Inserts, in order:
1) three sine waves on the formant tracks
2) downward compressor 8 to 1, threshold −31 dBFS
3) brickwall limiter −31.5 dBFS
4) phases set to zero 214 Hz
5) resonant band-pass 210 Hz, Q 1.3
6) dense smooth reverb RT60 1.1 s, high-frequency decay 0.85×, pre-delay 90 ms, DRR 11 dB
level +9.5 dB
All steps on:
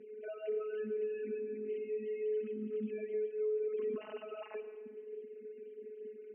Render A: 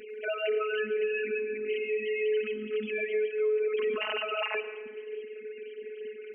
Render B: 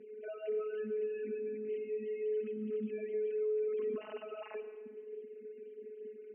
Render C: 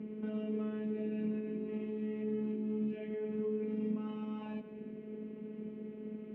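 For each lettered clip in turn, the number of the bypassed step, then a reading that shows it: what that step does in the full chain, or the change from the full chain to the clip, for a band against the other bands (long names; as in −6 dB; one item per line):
5, 250 Hz band −15.5 dB
2, average gain reduction 7.0 dB
1, 250 Hz band +13.0 dB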